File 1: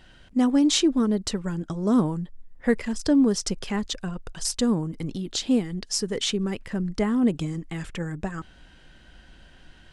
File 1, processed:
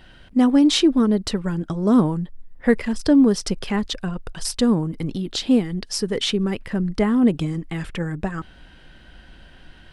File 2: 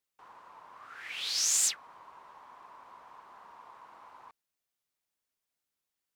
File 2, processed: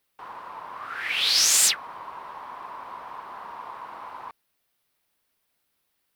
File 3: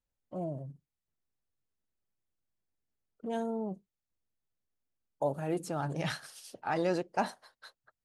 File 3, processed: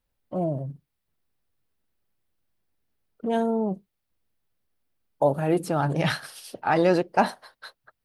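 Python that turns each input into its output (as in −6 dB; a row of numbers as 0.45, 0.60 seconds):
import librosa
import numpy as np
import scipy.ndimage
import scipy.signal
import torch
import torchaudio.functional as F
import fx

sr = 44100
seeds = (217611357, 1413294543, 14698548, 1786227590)

y = fx.peak_eq(x, sr, hz=6900.0, db=-8.5, octaves=0.64)
y = y * 10.0 ** (-6 / 20.0) / np.max(np.abs(y))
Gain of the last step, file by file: +4.5, +13.5, +10.0 decibels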